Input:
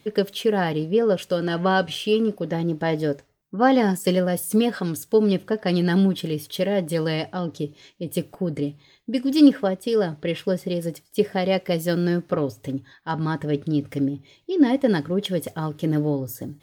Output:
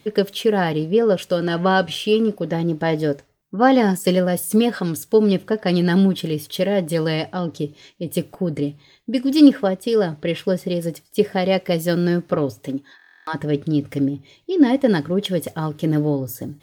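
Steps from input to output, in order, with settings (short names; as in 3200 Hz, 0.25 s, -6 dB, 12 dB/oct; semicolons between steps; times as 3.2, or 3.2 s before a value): 12.58–13.33 HPF 120 Hz -> 490 Hz 24 dB/oct; stuck buffer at 12.97, samples 1024, times 12; gain +3 dB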